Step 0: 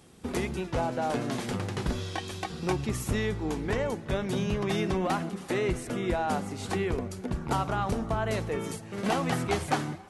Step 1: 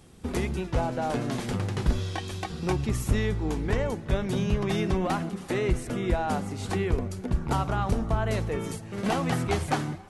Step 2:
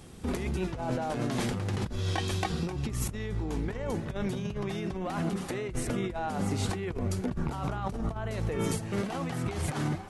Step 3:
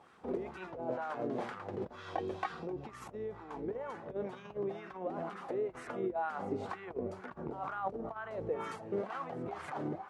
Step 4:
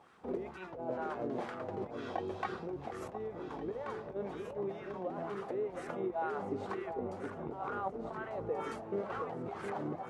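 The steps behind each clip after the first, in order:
bass shelf 95 Hz +11 dB
compressor with a negative ratio -32 dBFS, ratio -1
wah-wah 2.1 Hz 410–1400 Hz, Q 2.3; trim +2.5 dB
echo whose repeats swap between lows and highs 716 ms, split 870 Hz, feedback 66%, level -5.5 dB; trim -1 dB

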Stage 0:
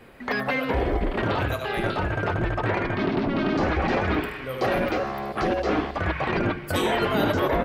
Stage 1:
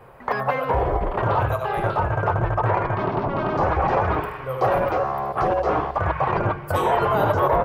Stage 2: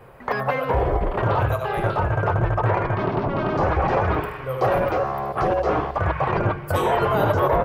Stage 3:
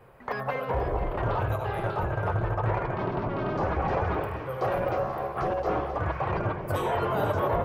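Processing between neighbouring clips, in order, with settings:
graphic EQ 125/250/500/1000/2000/4000/8000 Hz +8/-11/+4/+10/-5/-8/-4 dB
peaking EQ 930 Hz -4 dB 1.2 oct; trim +2 dB
echo whose repeats swap between lows and highs 243 ms, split 930 Hz, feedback 54%, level -6 dB; trim -7.5 dB

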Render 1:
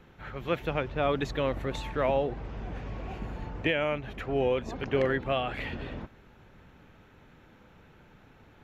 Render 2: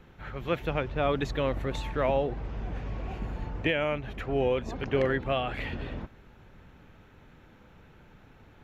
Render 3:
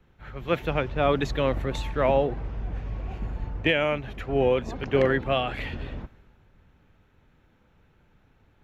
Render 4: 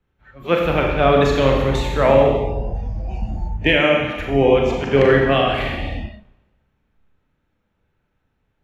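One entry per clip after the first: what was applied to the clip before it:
bass shelf 90 Hz +5 dB
three bands expanded up and down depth 40%; trim +3.5 dB
Schroeder reverb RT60 1.3 s, combs from 29 ms, DRR 0 dB; spectral noise reduction 17 dB; trim +6 dB

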